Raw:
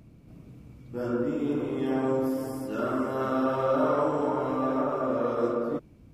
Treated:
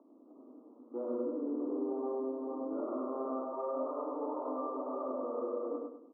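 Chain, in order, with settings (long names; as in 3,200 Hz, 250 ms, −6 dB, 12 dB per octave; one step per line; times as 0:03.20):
Chebyshev band-pass filter 250–1,200 Hz, order 5
downward compressor 16 to 1, threshold −34 dBFS, peak gain reduction 14 dB
repeating echo 101 ms, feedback 36%, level −3 dB
MP3 16 kbit/s 8,000 Hz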